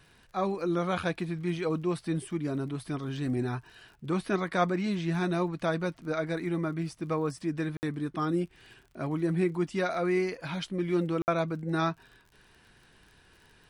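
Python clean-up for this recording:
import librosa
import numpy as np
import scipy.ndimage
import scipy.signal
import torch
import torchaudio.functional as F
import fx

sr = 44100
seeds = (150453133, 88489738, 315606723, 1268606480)

y = fx.fix_declick_ar(x, sr, threshold=6.5)
y = fx.fix_interpolate(y, sr, at_s=(7.77, 11.22), length_ms=59.0)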